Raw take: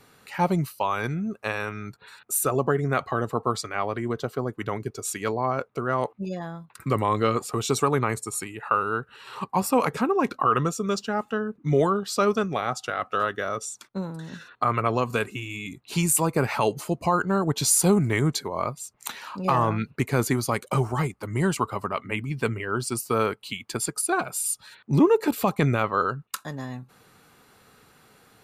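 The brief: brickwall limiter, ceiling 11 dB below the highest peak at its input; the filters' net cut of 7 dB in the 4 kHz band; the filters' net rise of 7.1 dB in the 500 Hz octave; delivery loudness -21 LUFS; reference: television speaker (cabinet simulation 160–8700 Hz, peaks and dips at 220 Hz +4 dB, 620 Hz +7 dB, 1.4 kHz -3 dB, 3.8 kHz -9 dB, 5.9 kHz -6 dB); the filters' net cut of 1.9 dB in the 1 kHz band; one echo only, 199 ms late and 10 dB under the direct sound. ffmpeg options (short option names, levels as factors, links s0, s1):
-af "equalizer=f=500:t=o:g=7,equalizer=f=1000:t=o:g=-4.5,equalizer=f=4000:t=o:g=-3.5,alimiter=limit=0.141:level=0:latency=1,highpass=f=160:w=0.5412,highpass=f=160:w=1.3066,equalizer=f=220:t=q:w=4:g=4,equalizer=f=620:t=q:w=4:g=7,equalizer=f=1400:t=q:w=4:g=-3,equalizer=f=3800:t=q:w=4:g=-9,equalizer=f=5900:t=q:w=4:g=-6,lowpass=f=8700:w=0.5412,lowpass=f=8700:w=1.3066,aecho=1:1:199:0.316,volume=2.11"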